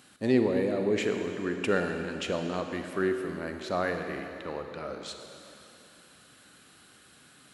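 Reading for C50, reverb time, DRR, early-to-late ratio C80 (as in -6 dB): 5.5 dB, 3.0 s, 5.0 dB, 6.0 dB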